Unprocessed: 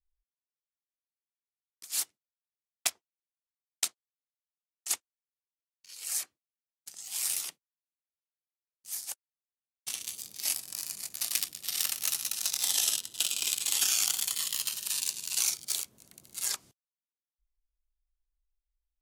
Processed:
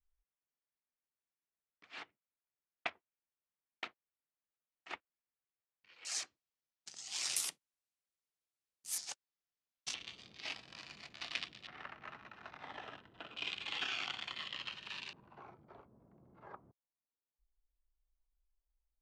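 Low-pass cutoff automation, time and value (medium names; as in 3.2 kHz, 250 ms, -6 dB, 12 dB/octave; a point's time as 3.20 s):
low-pass 24 dB/octave
2.5 kHz
from 6.05 s 6.3 kHz
from 7.36 s 11 kHz
from 8.98 s 6.3 kHz
from 9.94 s 3.4 kHz
from 11.67 s 1.7 kHz
from 13.37 s 2.9 kHz
from 15.13 s 1.1 kHz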